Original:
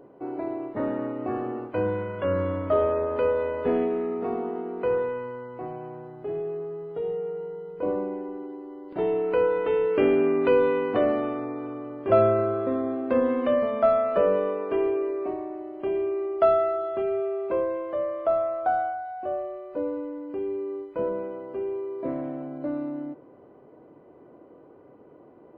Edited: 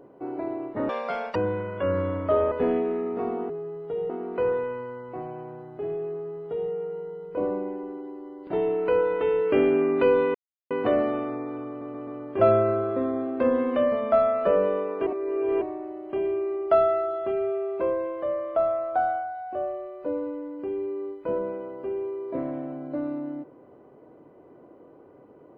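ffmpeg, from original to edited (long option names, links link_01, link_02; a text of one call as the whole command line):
ffmpeg -i in.wav -filter_complex "[0:a]asplit=12[link_01][link_02][link_03][link_04][link_05][link_06][link_07][link_08][link_09][link_10][link_11][link_12];[link_01]atrim=end=0.894[link_13];[link_02]atrim=start=0.89:end=1.77,asetpts=PTS-STARTPTS,asetrate=83349,aresample=44100,atrim=end_sample=20533,asetpts=PTS-STARTPTS[link_14];[link_03]atrim=start=1.766:end=2.932[link_15];[link_04]atrim=start=3.568:end=4.552[link_16];[link_05]atrim=start=6.558:end=7.162[link_17];[link_06]atrim=start=4.548:end=10.8,asetpts=PTS-STARTPTS,afade=type=out:start_time=6.248:duration=0.004:curve=hsin,apad=pad_dur=0.36[link_18];[link_07]atrim=start=10.8:end=11.912,asetpts=PTS-STARTPTS,afade=type=in:duration=0.004:curve=hsin[link_19];[link_08]atrim=start=11.778:end=11.912[link_20];[link_09]atrim=start=11.778:end=11.912[link_21];[link_10]atrim=start=11.778:end=14.772[link_22];[link_11]atrim=start=14.768:end=15.322,asetpts=PTS-STARTPTS,areverse[link_23];[link_12]atrim=start=15.318[link_24];[link_13][link_14]acrossfade=duration=0.004:curve1=hsin:curve2=hsin[link_25];[link_25][link_15]acrossfade=duration=0.004:curve1=hsin:curve2=hsin[link_26];[link_26][link_16]acrossfade=duration=0.004:curve1=hsin:curve2=hsin[link_27];[link_27][link_17]acrossfade=duration=0.004:curve1=hsin:curve2=hsin[link_28];[link_18][link_19]concat=n=2:v=0:a=1[link_29];[link_28][link_29]acrossfade=duration=0.004:curve1=hsin:curve2=hsin[link_30];[link_30][link_20]acrossfade=duration=0.004:curve1=hsin:curve2=hsin[link_31];[link_31][link_21]acrossfade=duration=0.004:curve1=hsin:curve2=hsin[link_32];[link_32][link_22]acrossfade=duration=0.004:curve1=hsin:curve2=hsin[link_33];[link_33][link_23]acrossfade=duration=0.004:curve1=hsin:curve2=hsin[link_34];[link_34][link_24]acrossfade=duration=0.004:curve1=hsin:curve2=hsin" out.wav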